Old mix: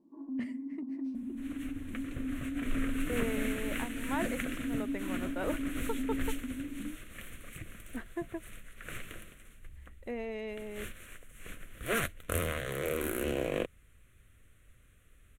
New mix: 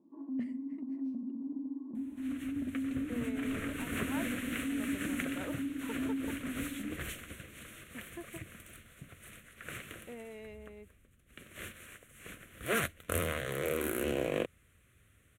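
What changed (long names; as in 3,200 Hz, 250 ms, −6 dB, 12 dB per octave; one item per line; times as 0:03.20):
speech −8.5 dB
second sound: entry +0.80 s
master: add high-pass filter 76 Hz 12 dB per octave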